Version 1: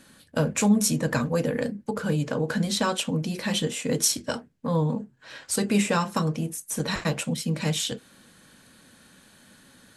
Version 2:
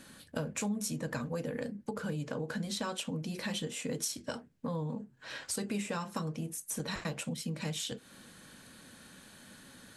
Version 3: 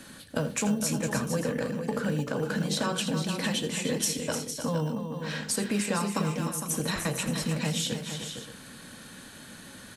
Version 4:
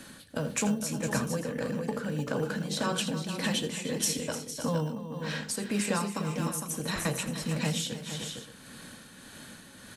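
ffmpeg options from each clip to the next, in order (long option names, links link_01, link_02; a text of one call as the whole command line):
ffmpeg -i in.wav -af "acompressor=threshold=-37dB:ratio=3" out.wav
ffmpeg -i in.wav -filter_complex "[0:a]acrossover=split=170|4300[link_01][link_02][link_03];[link_01]acrusher=samples=15:mix=1:aa=0.000001[link_04];[link_04][link_02][link_03]amix=inputs=3:normalize=0,aecho=1:1:82|302|458|576:0.2|0.376|0.376|0.178,volume=6.5dB" out.wav
ffmpeg -i in.wav -af "tremolo=f=1.7:d=0.44" out.wav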